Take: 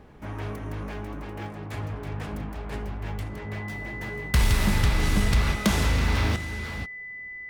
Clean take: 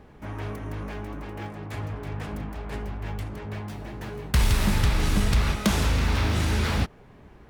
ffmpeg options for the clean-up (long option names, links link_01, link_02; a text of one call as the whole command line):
ffmpeg -i in.wav -af "bandreject=frequency=2000:width=30,asetnsamples=nb_out_samples=441:pad=0,asendcmd='6.36 volume volume 10dB',volume=0dB" out.wav